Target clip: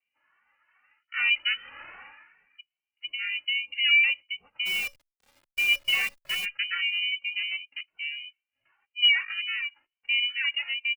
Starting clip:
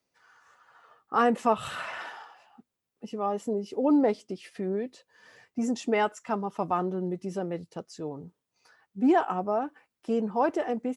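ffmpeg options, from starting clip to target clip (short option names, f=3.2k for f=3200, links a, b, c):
-filter_complex "[0:a]equalizer=f=250:t=o:w=2.1:g=14.5,dynaudnorm=f=860:g=5:m=8.5dB,lowpass=f=2.5k:t=q:w=0.5098,lowpass=f=2.5k:t=q:w=0.6013,lowpass=f=2.5k:t=q:w=0.9,lowpass=f=2.5k:t=q:w=2.563,afreqshift=-2900,aeval=exprs='val(0)*sin(2*PI*280*n/s)':c=same,asplit=3[a][b][c];[a]afade=t=out:st=4.65:d=0.02[d];[b]acrusher=bits=5:dc=4:mix=0:aa=0.000001,afade=t=in:st=4.65:d=0.02,afade=t=out:st=6.44:d=0.02[e];[c]afade=t=in:st=6.44:d=0.02[f];[d][e][f]amix=inputs=3:normalize=0,asplit=2[g][h];[h]adelay=2.2,afreqshift=2.5[i];[g][i]amix=inputs=2:normalize=1,volume=-5.5dB"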